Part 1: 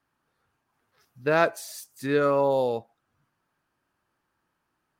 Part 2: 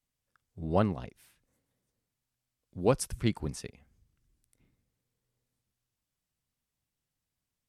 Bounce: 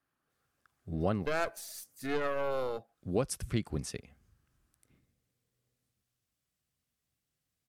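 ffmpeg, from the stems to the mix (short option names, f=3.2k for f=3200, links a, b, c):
-filter_complex "[0:a]equalizer=f=12k:t=o:w=0.77:g=3.5,aeval=exprs='0.398*(cos(1*acos(clip(val(0)/0.398,-1,1)))-cos(1*PI/2))+0.0708*(cos(6*acos(clip(val(0)/0.398,-1,1)))-cos(6*PI/2))':c=same,volume=-6.5dB,asplit=2[a][b];[1:a]highpass=45,adelay=300,volume=1.5dB[c];[b]apad=whole_len=352217[d];[c][d]sidechaincompress=threshold=-51dB:ratio=8:attack=16:release=173[e];[a][e]amix=inputs=2:normalize=0,bandreject=f=920:w=6.6,acompressor=threshold=-29dB:ratio=2.5"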